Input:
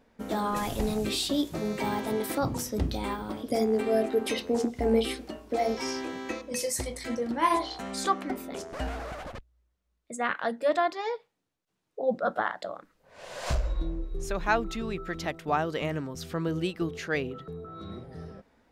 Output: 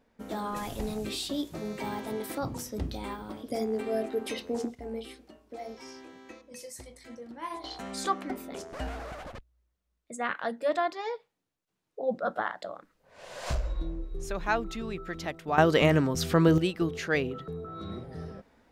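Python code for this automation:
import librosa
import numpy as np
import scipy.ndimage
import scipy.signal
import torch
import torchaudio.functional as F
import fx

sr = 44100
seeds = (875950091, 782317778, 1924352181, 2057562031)

y = fx.gain(x, sr, db=fx.steps((0.0, -5.0), (4.75, -13.5), (7.64, -2.5), (15.58, 9.0), (16.58, 2.0)))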